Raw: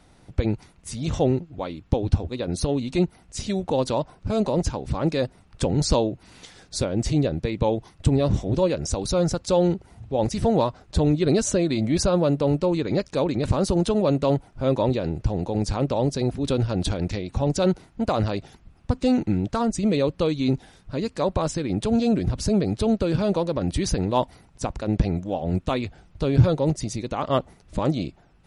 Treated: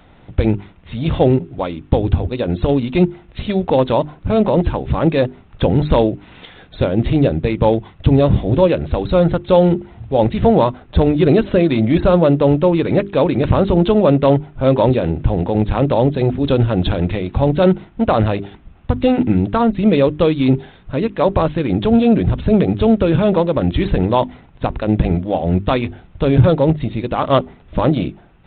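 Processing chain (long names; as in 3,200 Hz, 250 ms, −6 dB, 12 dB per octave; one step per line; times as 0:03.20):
mains-hum notches 50/100/150/200/250/300/350/400 Hz
boost into a limiter +10 dB
level −1 dB
G.726 32 kbit/s 8,000 Hz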